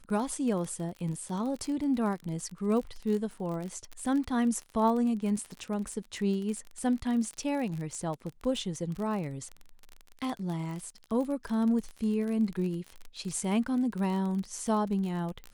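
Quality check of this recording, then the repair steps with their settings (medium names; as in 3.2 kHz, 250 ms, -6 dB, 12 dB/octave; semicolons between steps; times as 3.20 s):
crackle 33 per s -34 dBFS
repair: de-click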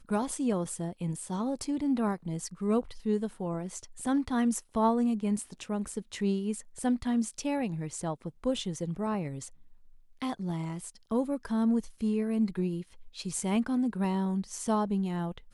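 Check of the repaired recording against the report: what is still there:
nothing left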